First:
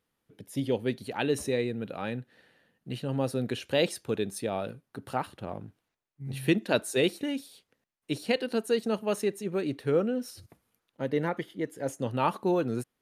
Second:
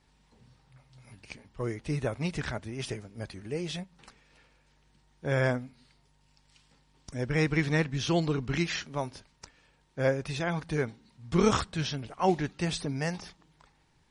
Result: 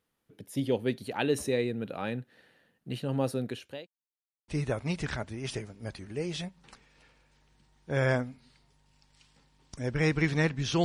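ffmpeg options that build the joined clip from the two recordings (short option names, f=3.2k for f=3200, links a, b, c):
-filter_complex "[0:a]apad=whole_dur=10.84,atrim=end=10.84,asplit=2[a][b];[a]atrim=end=3.87,asetpts=PTS-STARTPTS,afade=t=out:st=3.27:d=0.6[c];[b]atrim=start=3.87:end=4.48,asetpts=PTS-STARTPTS,volume=0[d];[1:a]atrim=start=1.83:end=8.19,asetpts=PTS-STARTPTS,afade=t=in:d=0.004:c=hsin[e];[c][d][e]concat=n=3:v=0:a=1"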